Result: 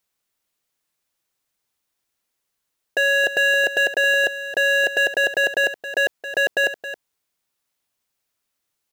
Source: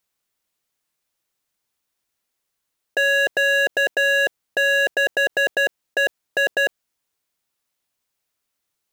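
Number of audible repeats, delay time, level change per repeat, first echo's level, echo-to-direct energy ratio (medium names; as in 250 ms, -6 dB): 1, 270 ms, no regular repeats, -12.0 dB, -12.0 dB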